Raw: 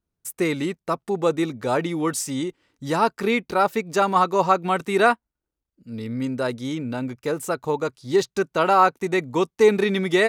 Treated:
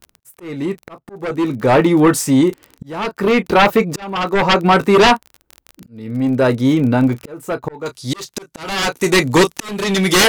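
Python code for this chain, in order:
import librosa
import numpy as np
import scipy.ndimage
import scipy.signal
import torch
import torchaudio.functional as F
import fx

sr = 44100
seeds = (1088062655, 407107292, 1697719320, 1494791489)

y = fx.peak_eq(x, sr, hz=8200.0, db=fx.steps((0.0, -11.0), (7.86, 7.0)), octaves=2.9)
y = fx.room_early_taps(y, sr, ms=(15, 33), db=(-12.0, -16.5))
y = fx.dmg_crackle(y, sr, seeds[0], per_s=28.0, level_db=-38.0)
y = fx.high_shelf(y, sr, hz=11000.0, db=5.5)
y = fx.fold_sine(y, sr, drive_db=13, ceiling_db=-4.0)
y = fx.auto_swell(y, sr, attack_ms=708.0)
y = F.gain(torch.from_numpy(y), -2.0).numpy()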